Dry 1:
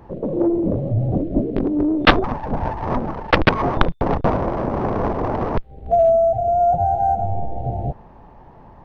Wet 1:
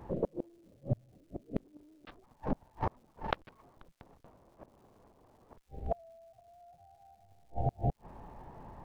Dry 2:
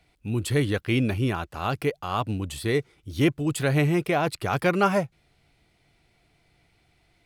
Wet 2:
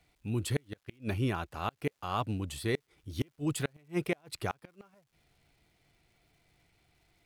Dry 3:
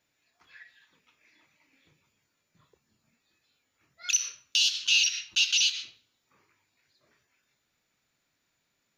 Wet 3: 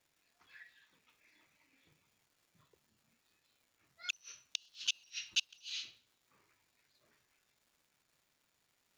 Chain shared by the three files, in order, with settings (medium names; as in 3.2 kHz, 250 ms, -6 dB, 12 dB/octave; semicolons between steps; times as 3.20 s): inverted gate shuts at -14 dBFS, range -36 dB; crackle 480 per s -58 dBFS; trim -5.5 dB